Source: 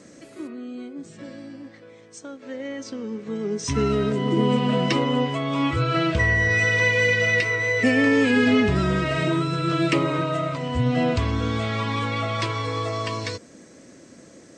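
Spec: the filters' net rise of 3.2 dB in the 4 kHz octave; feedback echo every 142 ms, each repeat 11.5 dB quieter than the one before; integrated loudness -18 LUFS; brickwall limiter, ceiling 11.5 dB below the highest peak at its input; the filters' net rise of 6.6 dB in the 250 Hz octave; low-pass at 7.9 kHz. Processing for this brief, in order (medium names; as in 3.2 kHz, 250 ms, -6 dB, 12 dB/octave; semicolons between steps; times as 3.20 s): low-pass 7.9 kHz; peaking EQ 250 Hz +7.5 dB; peaking EQ 4 kHz +4.5 dB; peak limiter -15.5 dBFS; feedback delay 142 ms, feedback 27%, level -11.5 dB; trim +6 dB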